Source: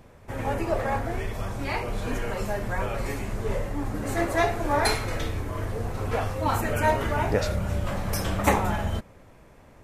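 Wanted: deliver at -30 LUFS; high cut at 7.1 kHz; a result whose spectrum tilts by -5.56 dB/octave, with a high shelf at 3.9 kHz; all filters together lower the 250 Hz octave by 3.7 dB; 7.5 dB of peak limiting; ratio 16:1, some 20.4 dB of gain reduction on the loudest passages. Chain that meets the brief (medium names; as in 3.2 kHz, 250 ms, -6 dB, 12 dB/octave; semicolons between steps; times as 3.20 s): low-pass 7.1 kHz; peaking EQ 250 Hz -5 dB; treble shelf 3.9 kHz -7 dB; compression 16:1, threshold -38 dBFS; trim +15 dB; peak limiter -19 dBFS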